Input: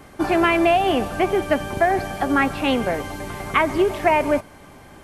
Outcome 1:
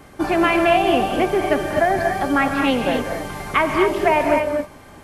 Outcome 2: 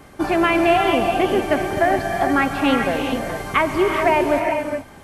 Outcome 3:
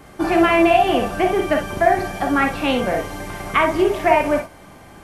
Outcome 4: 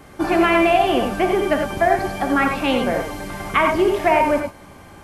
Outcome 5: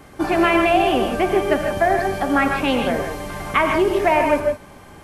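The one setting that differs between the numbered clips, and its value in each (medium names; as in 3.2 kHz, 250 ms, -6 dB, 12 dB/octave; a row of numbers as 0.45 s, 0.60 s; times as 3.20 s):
gated-style reverb, gate: 280 ms, 450 ms, 80 ms, 120 ms, 180 ms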